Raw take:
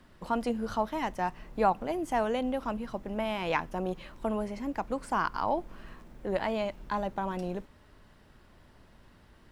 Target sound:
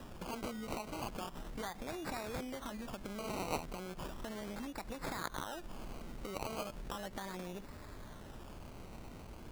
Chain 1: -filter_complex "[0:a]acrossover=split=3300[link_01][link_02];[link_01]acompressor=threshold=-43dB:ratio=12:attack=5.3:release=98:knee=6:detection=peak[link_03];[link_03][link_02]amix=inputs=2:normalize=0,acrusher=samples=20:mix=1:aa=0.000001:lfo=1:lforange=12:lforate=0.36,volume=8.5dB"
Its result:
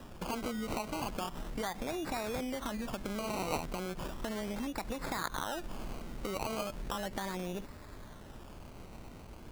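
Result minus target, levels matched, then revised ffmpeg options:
downward compressor: peak gain reduction −6.5 dB
-filter_complex "[0:a]acrossover=split=3300[link_01][link_02];[link_01]acompressor=threshold=-50dB:ratio=12:attack=5.3:release=98:knee=6:detection=peak[link_03];[link_03][link_02]amix=inputs=2:normalize=0,acrusher=samples=20:mix=1:aa=0.000001:lfo=1:lforange=12:lforate=0.36,volume=8.5dB"

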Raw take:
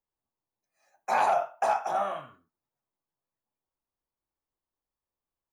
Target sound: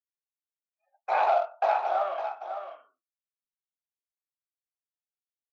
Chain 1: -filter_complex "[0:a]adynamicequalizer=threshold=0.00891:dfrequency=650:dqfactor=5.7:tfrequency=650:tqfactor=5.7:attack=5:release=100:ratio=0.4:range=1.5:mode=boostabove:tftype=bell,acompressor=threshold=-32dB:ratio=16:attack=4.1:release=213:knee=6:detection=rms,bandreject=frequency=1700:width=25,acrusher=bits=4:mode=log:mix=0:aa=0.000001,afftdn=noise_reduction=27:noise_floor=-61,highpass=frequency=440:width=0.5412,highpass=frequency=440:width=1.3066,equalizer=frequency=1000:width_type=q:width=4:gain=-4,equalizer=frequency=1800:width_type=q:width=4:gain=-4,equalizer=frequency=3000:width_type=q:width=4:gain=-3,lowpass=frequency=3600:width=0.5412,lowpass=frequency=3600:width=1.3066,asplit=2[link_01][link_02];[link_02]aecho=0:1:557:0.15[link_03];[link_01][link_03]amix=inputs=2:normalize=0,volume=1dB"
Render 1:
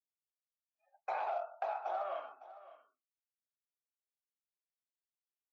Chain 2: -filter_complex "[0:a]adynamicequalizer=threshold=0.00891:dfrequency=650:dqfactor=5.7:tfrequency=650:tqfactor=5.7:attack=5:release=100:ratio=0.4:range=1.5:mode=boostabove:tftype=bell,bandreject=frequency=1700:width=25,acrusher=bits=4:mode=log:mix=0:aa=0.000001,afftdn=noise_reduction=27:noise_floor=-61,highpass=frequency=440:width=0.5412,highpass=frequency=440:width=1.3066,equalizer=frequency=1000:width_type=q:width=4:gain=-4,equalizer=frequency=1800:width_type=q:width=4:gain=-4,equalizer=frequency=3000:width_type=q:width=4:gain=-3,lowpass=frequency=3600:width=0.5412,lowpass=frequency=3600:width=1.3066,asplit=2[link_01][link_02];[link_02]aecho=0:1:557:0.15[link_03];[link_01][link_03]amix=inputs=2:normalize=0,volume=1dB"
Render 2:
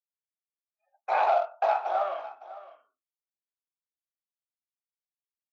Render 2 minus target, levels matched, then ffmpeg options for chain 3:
echo-to-direct −8 dB
-filter_complex "[0:a]adynamicequalizer=threshold=0.00891:dfrequency=650:dqfactor=5.7:tfrequency=650:tqfactor=5.7:attack=5:release=100:ratio=0.4:range=1.5:mode=boostabove:tftype=bell,bandreject=frequency=1700:width=25,acrusher=bits=4:mode=log:mix=0:aa=0.000001,afftdn=noise_reduction=27:noise_floor=-61,highpass=frequency=440:width=0.5412,highpass=frequency=440:width=1.3066,equalizer=frequency=1000:width_type=q:width=4:gain=-4,equalizer=frequency=1800:width_type=q:width=4:gain=-4,equalizer=frequency=3000:width_type=q:width=4:gain=-3,lowpass=frequency=3600:width=0.5412,lowpass=frequency=3600:width=1.3066,asplit=2[link_01][link_02];[link_02]aecho=0:1:557:0.376[link_03];[link_01][link_03]amix=inputs=2:normalize=0,volume=1dB"

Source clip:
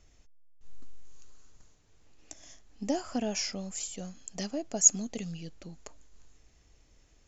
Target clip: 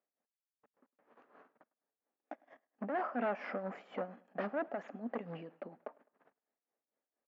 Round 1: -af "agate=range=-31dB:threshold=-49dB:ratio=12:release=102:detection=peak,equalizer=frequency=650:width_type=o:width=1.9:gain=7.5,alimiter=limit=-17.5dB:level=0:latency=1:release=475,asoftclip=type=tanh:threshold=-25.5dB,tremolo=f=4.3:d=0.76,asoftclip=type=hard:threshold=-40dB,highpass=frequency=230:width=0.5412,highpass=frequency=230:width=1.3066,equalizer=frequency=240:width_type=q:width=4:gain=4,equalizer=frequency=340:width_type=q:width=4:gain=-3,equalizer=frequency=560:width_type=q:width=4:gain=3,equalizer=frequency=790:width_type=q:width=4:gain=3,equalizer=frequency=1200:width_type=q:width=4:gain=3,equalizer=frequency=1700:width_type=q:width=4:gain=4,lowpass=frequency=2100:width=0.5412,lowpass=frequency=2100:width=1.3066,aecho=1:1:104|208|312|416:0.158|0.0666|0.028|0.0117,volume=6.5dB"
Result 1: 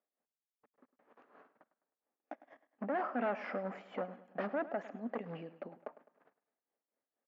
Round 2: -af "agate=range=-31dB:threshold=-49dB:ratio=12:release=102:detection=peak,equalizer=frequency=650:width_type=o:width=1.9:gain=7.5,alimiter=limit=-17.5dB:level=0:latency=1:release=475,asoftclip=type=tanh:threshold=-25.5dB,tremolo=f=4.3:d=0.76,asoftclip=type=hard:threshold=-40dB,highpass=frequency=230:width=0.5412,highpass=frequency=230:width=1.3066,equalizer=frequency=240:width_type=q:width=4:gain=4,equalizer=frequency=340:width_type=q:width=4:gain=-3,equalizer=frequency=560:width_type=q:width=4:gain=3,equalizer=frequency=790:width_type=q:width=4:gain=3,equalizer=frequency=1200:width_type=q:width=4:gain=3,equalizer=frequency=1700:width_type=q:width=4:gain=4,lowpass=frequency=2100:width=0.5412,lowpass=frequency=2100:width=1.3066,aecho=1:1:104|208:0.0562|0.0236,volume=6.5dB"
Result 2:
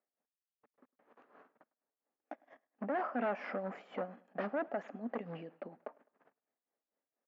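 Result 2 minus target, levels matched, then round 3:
soft clipping: distortion −6 dB
-af "agate=range=-31dB:threshold=-49dB:ratio=12:release=102:detection=peak,equalizer=frequency=650:width_type=o:width=1.9:gain=7.5,alimiter=limit=-17.5dB:level=0:latency=1:release=475,asoftclip=type=tanh:threshold=-31.5dB,tremolo=f=4.3:d=0.76,asoftclip=type=hard:threshold=-40dB,highpass=frequency=230:width=0.5412,highpass=frequency=230:width=1.3066,equalizer=frequency=240:width_type=q:width=4:gain=4,equalizer=frequency=340:width_type=q:width=4:gain=-3,equalizer=frequency=560:width_type=q:width=4:gain=3,equalizer=frequency=790:width_type=q:width=4:gain=3,equalizer=frequency=1200:width_type=q:width=4:gain=3,equalizer=frequency=1700:width_type=q:width=4:gain=4,lowpass=frequency=2100:width=0.5412,lowpass=frequency=2100:width=1.3066,aecho=1:1:104|208:0.0562|0.0236,volume=6.5dB"

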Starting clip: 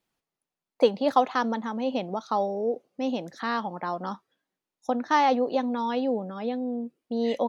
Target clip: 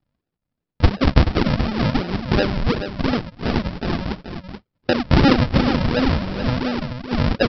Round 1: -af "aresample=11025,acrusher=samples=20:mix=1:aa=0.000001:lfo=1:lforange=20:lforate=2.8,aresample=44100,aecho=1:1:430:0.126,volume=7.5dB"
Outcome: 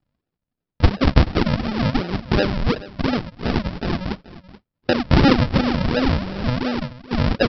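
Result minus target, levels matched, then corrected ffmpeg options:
echo-to-direct −9 dB
-af "aresample=11025,acrusher=samples=20:mix=1:aa=0.000001:lfo=1:lforange=20:lforate=2.8,aresample=44100,aecho=1:1:430:0.355,volume=7.5dB"

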